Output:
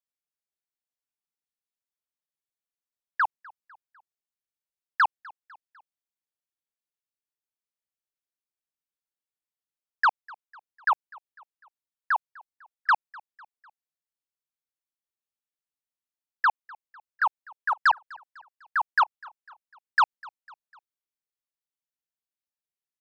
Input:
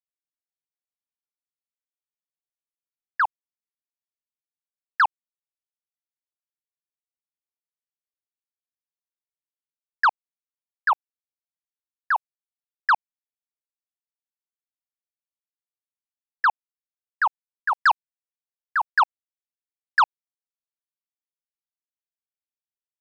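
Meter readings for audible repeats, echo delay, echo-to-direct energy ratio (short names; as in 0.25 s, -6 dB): 2, 0.25 s, -22.5 dB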